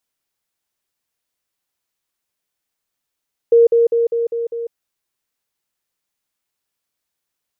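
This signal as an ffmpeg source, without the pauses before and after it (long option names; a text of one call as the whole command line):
ffmpeg -f lavfi -i "aevalsrc='pow(10,(-6.5-3*floor(t/0.2))/20)*sin(2*PI*466*t)*clip(min(mod(t,0.2),0.15-mod(t,0.2))/0.005,0,1)':duration=1.2:sample_rate=44100" out.wav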